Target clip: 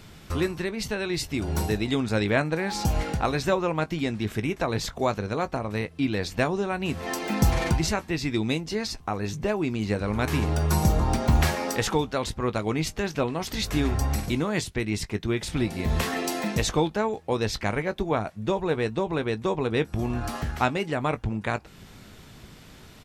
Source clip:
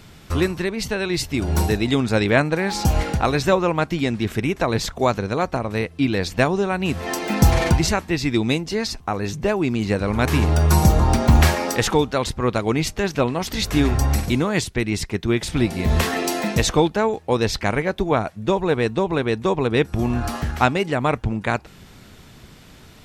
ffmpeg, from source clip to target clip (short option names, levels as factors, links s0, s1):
-filter_complex "[0:a]asplit=2[s0][s1];[s1]acompressor=threshold=0.0316:ratio=6,volume=0.794[s2];[s0][s2]amix=inputs=2:normalize=0,asplit=2[s3][s4];[s4]adelay=19,volume=0.224[s5];[s3][s5]amix=inputs=2:normalize=0,volume=0.422"